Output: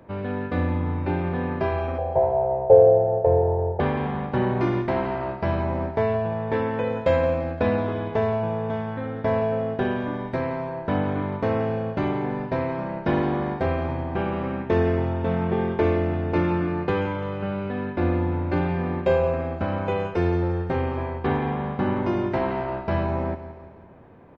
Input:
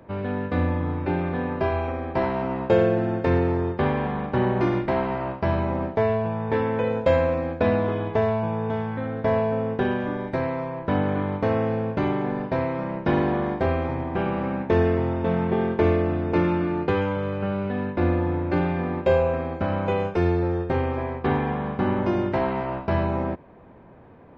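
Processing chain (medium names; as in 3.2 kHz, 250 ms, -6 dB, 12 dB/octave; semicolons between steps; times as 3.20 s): 1.98–3.80 s: FFT filter 140 Hz 0 dB, 270 Hz -26 dB, 450 Hz +9 dB, 800 Hz +7 dB, 1.2 kHz -16 dB, 3.5 kHz -25 dB; feedback delay 171 ms, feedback 51%, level -13 dB; trim -1 dB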